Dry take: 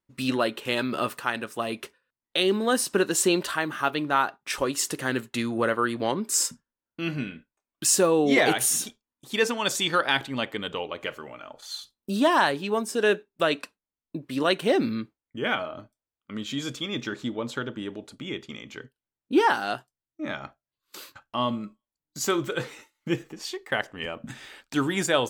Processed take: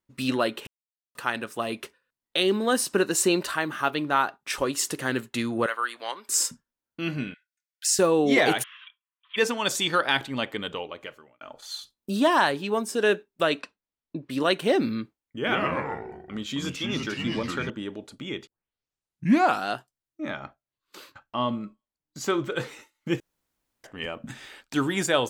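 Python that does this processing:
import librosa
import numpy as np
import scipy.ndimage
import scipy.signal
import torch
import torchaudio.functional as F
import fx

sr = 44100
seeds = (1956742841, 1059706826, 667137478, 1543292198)

y = fx.notch(x, sr, hz=3300.0, q=9.9, at=(2.93, 3.54))
y = fx.highpass(y, sr, hz=980.0, slope=12, at=(5.66, 6.29))
y = fx.cheby_ripple_highpass(y, sr, hz=1400.0, ripple_db=6, at=(7.34, 7.99))
y = fx.cheby1_bandpass(y, sr, low_hz=1000.0, high_hz=3300.0, order=5, at=(8.62, 9.36), fade=0.02)
y = fx.lowpass(y, sr, hz=5300.0, slope=12, at=(13.6, 14.3))
y = fx.echo_pitch(y, sr, ms=92, semitones=-3, count=3, db_per_echo=-3.0, at=(15.38, 17.7))
y = fx.high_shelf(y, sr, hz=5500.0, db=-11.0, at=(20.3, 22.56))
y = fx.edit(y, sr, fx.silence(start_s=0.67, length_s=0.48),
    fx.fade_out_span(start_s=10.64, length_s=0.77),
    fx.tape_start(start_s=18.47, length_s=1.2),
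    fx.room_tone_fill(start_s=23.2, length_s=0.64), tone=tone)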